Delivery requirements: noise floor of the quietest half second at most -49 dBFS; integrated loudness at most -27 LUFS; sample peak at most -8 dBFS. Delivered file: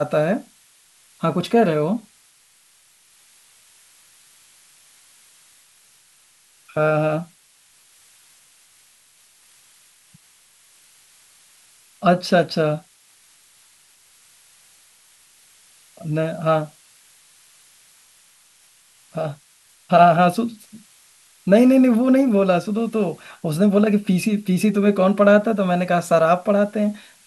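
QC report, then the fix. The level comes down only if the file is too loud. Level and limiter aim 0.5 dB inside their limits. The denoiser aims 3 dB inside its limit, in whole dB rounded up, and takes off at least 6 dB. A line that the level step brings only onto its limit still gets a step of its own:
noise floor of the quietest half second -56 dBFS: OK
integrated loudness -19.0 LUFS: fail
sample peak -2.0 dBFS: fail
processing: gain -8.5 dB

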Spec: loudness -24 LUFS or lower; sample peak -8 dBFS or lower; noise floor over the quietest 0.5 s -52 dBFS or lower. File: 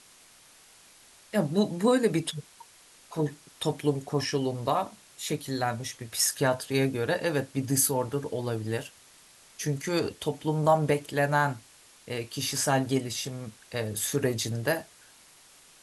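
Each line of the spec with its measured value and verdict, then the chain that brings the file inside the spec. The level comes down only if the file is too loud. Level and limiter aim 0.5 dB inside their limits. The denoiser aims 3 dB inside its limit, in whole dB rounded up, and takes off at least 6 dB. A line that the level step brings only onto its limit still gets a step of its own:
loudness -28.5 LUFS: OK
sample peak -10.0 dBFS: OK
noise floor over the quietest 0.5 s -56 dBFS: OK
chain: none

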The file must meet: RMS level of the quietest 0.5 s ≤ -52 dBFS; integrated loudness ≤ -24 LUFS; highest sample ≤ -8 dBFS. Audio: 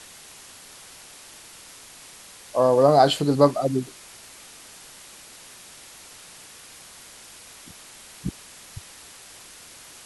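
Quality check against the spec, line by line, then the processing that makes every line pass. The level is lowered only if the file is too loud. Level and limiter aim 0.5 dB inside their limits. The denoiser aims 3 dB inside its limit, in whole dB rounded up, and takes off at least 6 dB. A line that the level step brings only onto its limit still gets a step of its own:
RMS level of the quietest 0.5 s -46 dBFS: fail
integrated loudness -20.5 LUFS: fail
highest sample -2.5 dBFS: fail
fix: denoiser 6 dB, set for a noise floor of -46 dBFS; gain -4 dB; limiter -8.5 dBFS

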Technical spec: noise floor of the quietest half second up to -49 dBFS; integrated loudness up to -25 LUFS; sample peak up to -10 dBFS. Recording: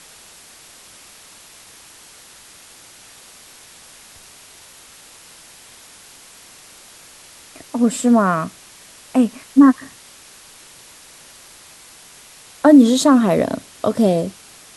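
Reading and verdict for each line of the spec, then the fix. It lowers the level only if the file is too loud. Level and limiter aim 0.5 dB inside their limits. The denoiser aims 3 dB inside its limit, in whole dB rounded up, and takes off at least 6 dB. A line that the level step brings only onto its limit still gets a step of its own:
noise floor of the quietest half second -44 dBFS: fail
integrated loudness -16.0 LUFS: fail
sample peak -1.5 dBFS: fail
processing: gain -9.5 dB

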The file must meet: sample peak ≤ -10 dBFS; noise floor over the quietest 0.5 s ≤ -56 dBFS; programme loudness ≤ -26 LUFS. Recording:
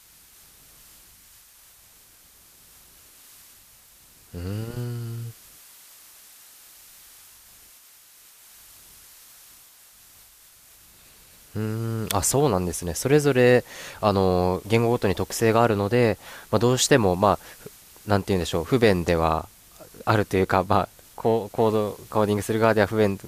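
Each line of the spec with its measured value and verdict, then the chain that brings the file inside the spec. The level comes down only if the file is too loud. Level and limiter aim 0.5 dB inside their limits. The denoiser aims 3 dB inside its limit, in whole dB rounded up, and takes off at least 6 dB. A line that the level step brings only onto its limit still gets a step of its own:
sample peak -5.0 dBFS: fail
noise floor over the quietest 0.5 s -53 dBFS: fail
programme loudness -22.5 LUFS: fail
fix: gain -4 dB; limiter -10.5 dBFS

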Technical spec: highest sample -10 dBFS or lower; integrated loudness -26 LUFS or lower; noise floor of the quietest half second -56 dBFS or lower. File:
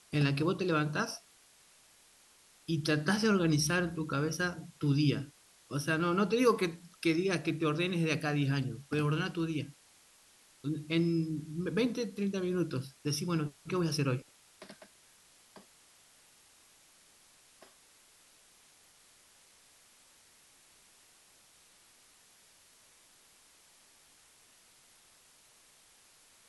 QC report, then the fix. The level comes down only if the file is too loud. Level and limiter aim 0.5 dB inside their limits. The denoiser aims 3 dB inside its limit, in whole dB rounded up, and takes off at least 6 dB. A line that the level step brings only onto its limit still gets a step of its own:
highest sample -14.5 dBFS: OK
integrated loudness -32.0 LUFS: OK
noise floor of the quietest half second -63 dBFS: OK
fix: none

